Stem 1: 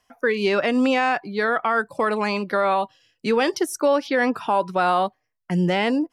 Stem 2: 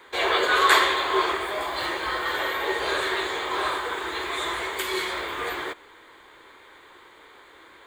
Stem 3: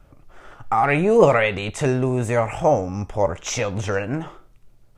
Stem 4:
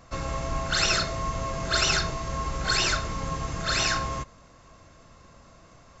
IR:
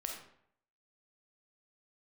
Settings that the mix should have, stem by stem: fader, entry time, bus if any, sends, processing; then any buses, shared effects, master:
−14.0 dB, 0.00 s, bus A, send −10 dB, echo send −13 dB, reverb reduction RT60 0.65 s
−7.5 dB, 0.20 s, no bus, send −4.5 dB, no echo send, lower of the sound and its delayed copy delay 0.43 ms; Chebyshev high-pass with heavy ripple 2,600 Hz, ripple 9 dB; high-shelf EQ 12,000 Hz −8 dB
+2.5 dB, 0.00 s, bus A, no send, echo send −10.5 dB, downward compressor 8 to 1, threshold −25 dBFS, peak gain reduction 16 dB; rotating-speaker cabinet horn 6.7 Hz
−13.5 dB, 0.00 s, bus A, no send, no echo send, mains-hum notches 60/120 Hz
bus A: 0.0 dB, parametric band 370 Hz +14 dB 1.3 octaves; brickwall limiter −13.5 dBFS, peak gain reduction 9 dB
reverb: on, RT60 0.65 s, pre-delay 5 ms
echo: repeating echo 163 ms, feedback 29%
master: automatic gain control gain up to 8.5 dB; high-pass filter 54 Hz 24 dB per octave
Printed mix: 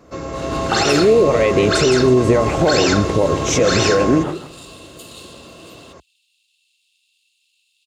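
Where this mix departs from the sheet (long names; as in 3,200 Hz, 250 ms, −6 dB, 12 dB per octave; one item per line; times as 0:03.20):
stem 1: muted
stem 4 −13.5 dB → −1.5 dB
reverb: off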